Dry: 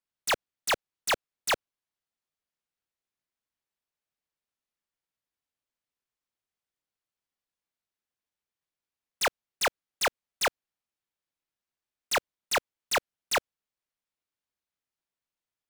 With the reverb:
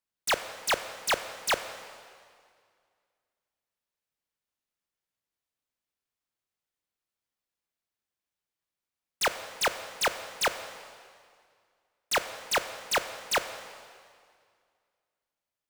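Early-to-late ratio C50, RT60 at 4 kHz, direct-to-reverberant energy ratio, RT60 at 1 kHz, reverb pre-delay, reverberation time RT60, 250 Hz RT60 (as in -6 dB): 10.5 dB, 1.9 s, 9.5 dB, 2.1 s, 17 ms, 2.1 s, 2.1 s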